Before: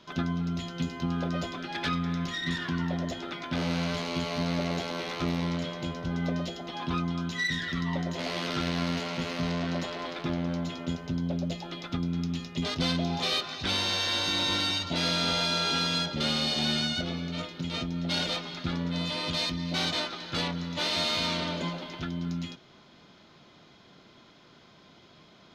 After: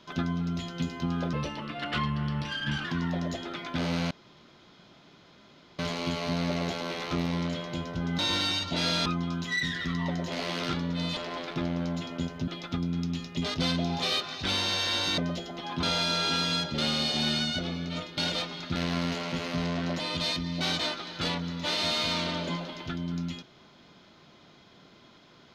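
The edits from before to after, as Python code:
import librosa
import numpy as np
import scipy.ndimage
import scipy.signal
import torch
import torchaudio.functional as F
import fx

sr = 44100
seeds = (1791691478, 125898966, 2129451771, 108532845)

y = fx.edit(x, sr, fx.speed_span(start_s=1.33, length_s=1.29, speed=0.85),
    fx.insert_room_tone(at_s=3.88, length_s=1.68),
    fx.swap(start_s=6.28, length_s=0.65, other_s=14.38, other_length_s=0.87),
    fx.swap(start_s=8.61, length_s=1.24, other_s=18.7, other_length_s=0.43),
    fx.cut(start_s=11.16, length_s=0.52),
    fx.cut(start_s=17.6, length_s=0.52), tone=tone)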